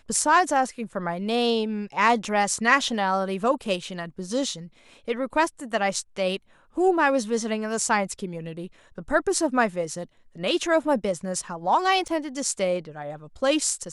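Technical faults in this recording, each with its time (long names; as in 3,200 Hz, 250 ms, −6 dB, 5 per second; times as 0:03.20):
0:12.08–0:12.09: drop-out 6 ms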